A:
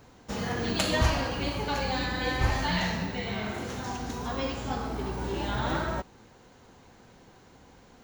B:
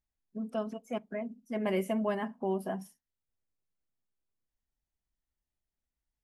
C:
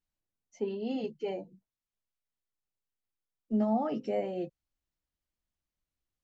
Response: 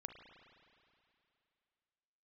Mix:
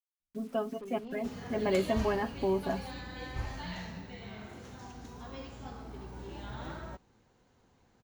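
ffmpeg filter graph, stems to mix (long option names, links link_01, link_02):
-filter_complex "[0:a]adelay=950,volume=-14dB[link_01];[1:a]highshelf=frequency=5100:gain=-8.5,aecho=1:1:7.2:0.56,acrusher=bits=9:mix=0:aa=0.000001,volume=1dB,asplit=2[link_02][link_03];[2:a]asoftclip=type=hard:threshold=-30.5dB,adelay=200,volume=-10.5dB[link_04];[link_03]apad=whole_len=283804[link_05];[link_04][link_05]sidechaingate=range=-33dB:threshold=-53dB:ratio=16:detection=peak[link_06];[link_01][link_02][link_06]amix=inputs=3:normalize=0,lowshelf=frequency=230:gain=4"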